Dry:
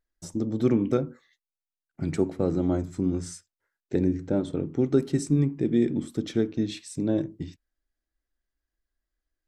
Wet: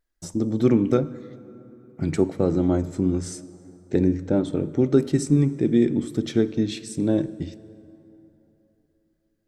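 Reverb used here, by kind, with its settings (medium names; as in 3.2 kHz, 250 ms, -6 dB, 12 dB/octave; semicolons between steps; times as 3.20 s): plate-style reverb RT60 3.4 s, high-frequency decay 0.55×, DRR 16.5 dB; trim +4 dB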